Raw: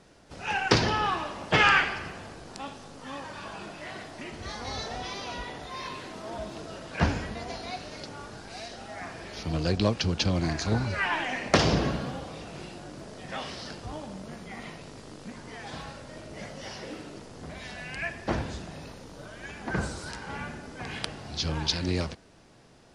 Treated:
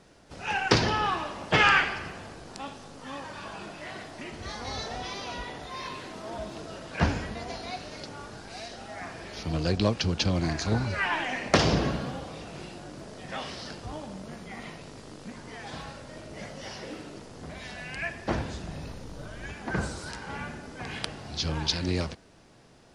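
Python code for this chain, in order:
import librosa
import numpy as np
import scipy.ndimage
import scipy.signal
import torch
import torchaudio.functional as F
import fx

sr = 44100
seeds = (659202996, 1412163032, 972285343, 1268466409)

y = fx.low_shelf(x, sr, hz=130.0, db=10.5, at=(18.64, 19.53))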